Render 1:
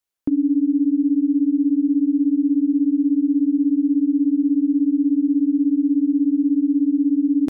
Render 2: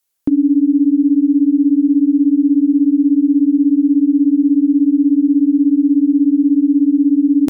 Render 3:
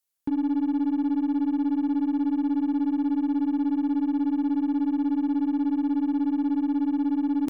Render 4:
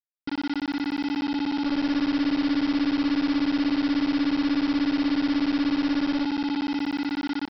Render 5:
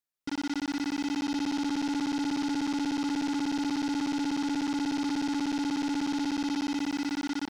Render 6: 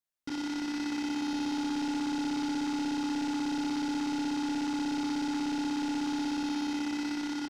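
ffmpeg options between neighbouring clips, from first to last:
-af "aemphasis=mode=production:type=cd,volume=6dB"
-af "asoftclip=type=tanh:threshold=-12.5dB,aeval=exprs='0.237*(cos(1*acos(clip(val(0)/0.237,-1,1)))-cos(1*PI/2))+0.0106*(cos(3*acos(clip(val(0)/0.237,-1,1)))-cos(3*PI/2))+0.00335*(cos(6*acos(clip(val(0)/0.237,-1,1)))-cos(6*PI/2))+0.00668*(cos(8*acos(clip(val(0)/0.237,-1,1)))-cos(8*PI/2))':c=same,volume=-8dB"
-af "dynaudnorm=f=360:g=7:m=8dB,aresample=11025,acrusher=bits=3:mix=0:aa=0.000001,aresample=44100,volume=-7.5dB"
-af "asoftclip=type=tanh:threshold=-32dB,volume=4dB"
-filter_complex "[0:a]asplit=2[a][b];[b]adelay=27,volume=-3dB[c];[a][c]amix=inputs=2:normalize=0,volume=-3.5dB"

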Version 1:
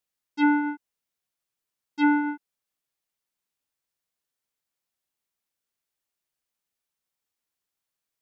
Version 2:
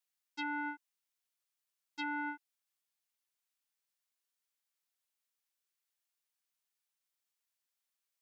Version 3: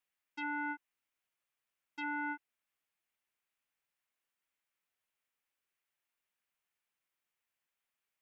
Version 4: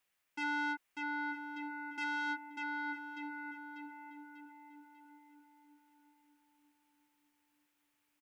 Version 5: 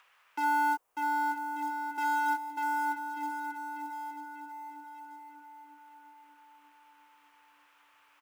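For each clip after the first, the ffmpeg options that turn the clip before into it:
-af "alimiter=limit=-22dB:level=0:latency=1:release=29,highpass=f=1.3k:p=1,volume=-2dB"
-af "highshelf=f=3.3k:t=q:w=1.5:g=-7.5,alimiter=level_in=8dB:limit=-24dB:level=0:latency=1:release=21,volume=-8dB,volume=3.5dB"
-filter_complex "[0:a]asplit=2[a][b];[b]aecho=0:1:593|1186|1779|2372|2965:0.531|0.218|0.0892|0.0366|0.015[c];[a][c]amix=inputs=2:normalize=0,asoftclip=type=tanh:threshold=-36dB,asplit=2[d][e];[e]adelay=941,lowpass=f=1k:p=1,volume=-6.5dB,asplit=2[f][g];[g]adelay=941,lowpass=f=1k:p=1,volume=0.43,asplit=2[h][i];[i]adelay=941,lowpass=f=1k:p=1,volume=0.43,asplit=2[j][k];[k]adelay=941,lowpass=f=1k:p=1,volume=0.43,asplit=2[l][m];[m]adelay=941,lowpass=f=1k:p=1,volume=0.43[n];[f][h][j][l][n]amix=inputs=5:normalize=0[o];[d][o]amix=inputs=2:normalize=0,volume=7dB"
-filter_complex "[0:a]equalizer=f=250:t=o:w=1:g=-7,equalizer=f=500:t=o:w=1:g=10,equalizer=f=1k:t=o:w=1:g=9,equalizer=f=2k:t=o:w=1:g=-9,equalizer=f=4k:t=o:w=1:g=-8,acrossover=split=560|1400|3600[a][b][c][d];[b]acrusher=bits=4:mode=log:mix=0:aa=0.000001[e];[c]acompressor=mode=upward:threshold=-50dB:ratio=2.5[f];[a][e][f][d]amix=inputs=4:normalize=0,volume=4.5dB"

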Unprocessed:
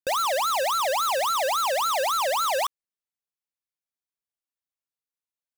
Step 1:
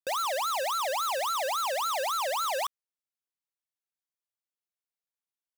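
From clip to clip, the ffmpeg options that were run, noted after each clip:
-af "highpass=f=260:p=1,volume=-5dB"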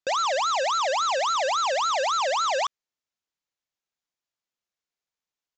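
-af "aresample=16000,aresample=44100,volume=5.5dB"

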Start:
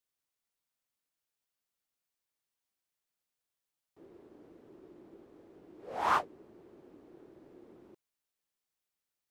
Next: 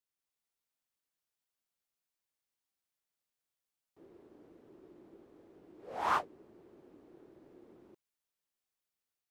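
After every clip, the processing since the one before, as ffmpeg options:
-af "dynaudnorm=f=100:g=5:m=3dB,volume=-5.5dB"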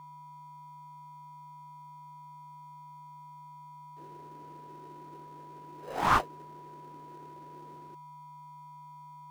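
-filter_complex "[0:a]lowshelf=f=380:g=-10.5,aeval=exprs='val(0)+0.002*sin(2*PI*980*n/s)':c=same,asplit=2[a][b];[b]acrusher=samples=39:mix=1:aa=0.000001,volume=-8.5dB[c];[a][c]amix=inputs=2:normalize=0,volume=7.5dB"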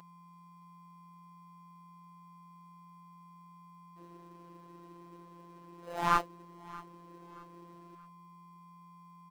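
-af "acompressor=mode=upward:threshold=-52dB:ratio=2.5,afftfilt=real='hypot(re,im)*cos(PI*b)':imag='0':win_size=1024:overlap=0.75,aecho=1:1:626|1252|1878:0.0891|0.0339|0.0129"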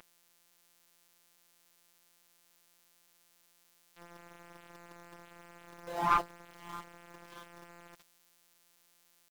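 -af "aeval=exprs='val(0)*gte(abs(val(0)),0.00422)':c=same,aeval=exprs='(tanh(7.08*val(0)+0.45)-tanh(0.45))/7.08':c=same,volume=4dB"

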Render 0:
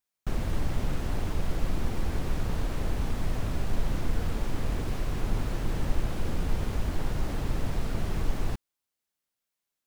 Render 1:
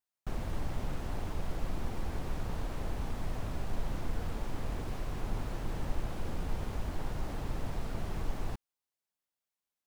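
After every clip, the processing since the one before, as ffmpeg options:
-af "equalizer=f=830:t=o:w=1.2:g=4,volume=-7dB"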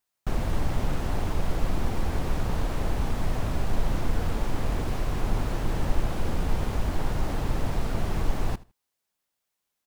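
-af "aecho=1:1:79|158:0.0944|0.0189,volume=9dB"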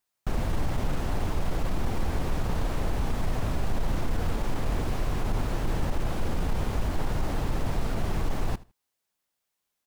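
-af "alimiter=limit=-18dB:level=0:latency=1:release=17"

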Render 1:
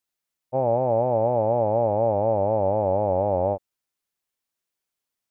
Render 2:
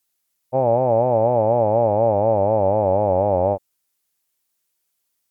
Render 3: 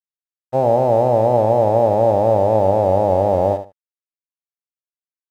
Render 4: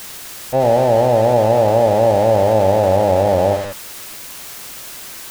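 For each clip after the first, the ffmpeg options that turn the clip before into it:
-af "aemphasis=mode=production:type=cd,volume=4.5dB"
-af "aeval=exprs='sgn(val(0))*max(abs(val(0))-0.0075,0)':c=same,aecho=1:1:73|146:0.316|0.0538,volume=2.5dB"
-af "aeval=exprs='val(0)+0.5*0.0891*sgn(val(0))':c=same"

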